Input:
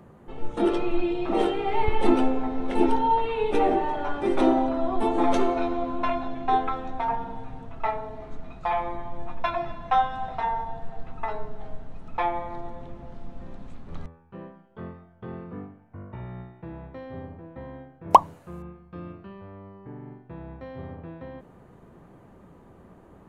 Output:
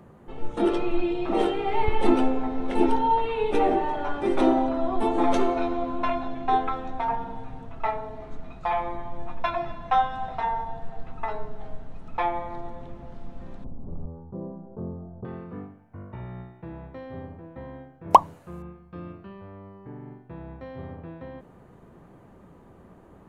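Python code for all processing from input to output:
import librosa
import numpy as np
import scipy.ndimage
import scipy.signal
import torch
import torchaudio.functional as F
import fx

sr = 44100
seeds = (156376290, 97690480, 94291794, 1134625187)

y = fx.chain(x, sr, fx.bessel_lowpass(hz=580.0, order=6),
    fx.env_flatten(amount_pct=50), at=(13.64, 15.25))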